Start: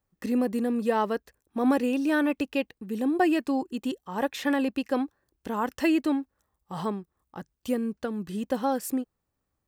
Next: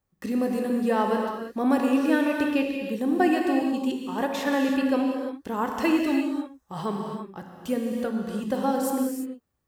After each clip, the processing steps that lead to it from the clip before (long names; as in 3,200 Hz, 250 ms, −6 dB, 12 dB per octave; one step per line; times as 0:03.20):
reverb whose tail is shaped and stops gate 370 ms flat, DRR 1 dB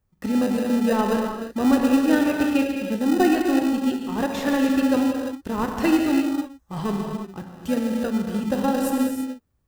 low-shelf EQ 130 Hz +9 dB
in parallel at −7 dB: sample-rate reduction 1,100 Hz, jitter 0%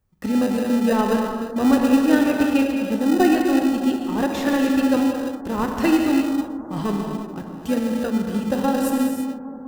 bucket-brigade delay 201 ms, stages 2,048, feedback 83%, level −15.5 dB
level +1.5 dB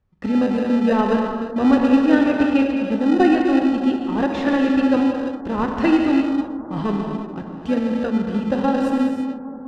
low-pass filter 3,500 Hz 12 dB per octave
level +1.5 dB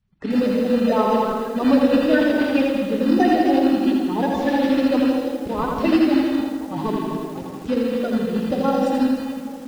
spectral magnitudes quantised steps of 30 dB
feedback echo at a low word length 82 ms, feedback 55%, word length 7 bits, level −4 dB
level −1.5 dB